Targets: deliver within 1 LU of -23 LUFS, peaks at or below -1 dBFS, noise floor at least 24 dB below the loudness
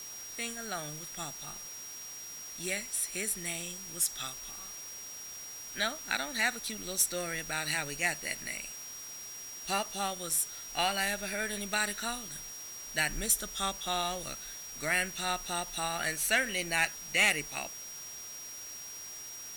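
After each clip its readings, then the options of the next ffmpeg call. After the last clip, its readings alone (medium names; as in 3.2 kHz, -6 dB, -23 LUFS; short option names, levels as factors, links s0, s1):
steady tone 5.7 kHz; tone level -43 dBFS; noise floor -44 dBFS; noise floor target -57 dBFS; loudness -33.0 LUFS; peak level -17.0 dBFS; loudness target -23.0 LUFS
-> -af "bandreject=f=5700:w=30"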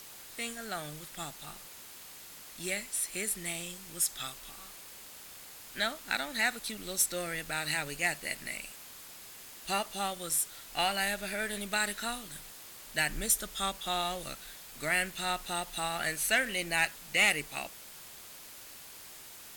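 steady tone not found; noise floor -49 dBFS; noise floor target -56 dBFS
-> -af "afftdn=nr=7:nf=-49"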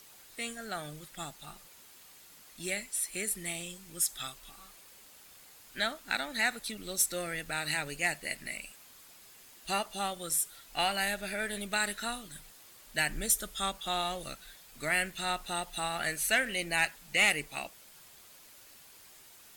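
noise floor -56 dBFS; noise floor target -57 dBFS
-> -af "afftdn=nr=6:nf=-56"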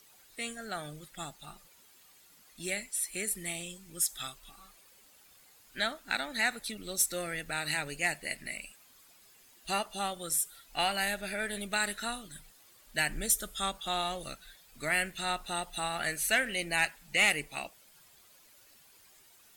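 noise floor -60 dBFS; loudness -32.5 LUFS; peak level -16.5 dBFS; loudness target -23.0 LUFS
-> -af "volume=2.99"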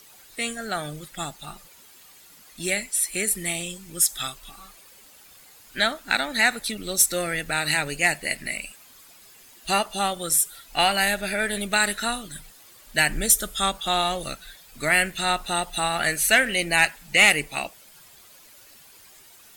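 loudness -23.0 LUFS; peak level -7.0 dBFS; noise floor -51 dBFS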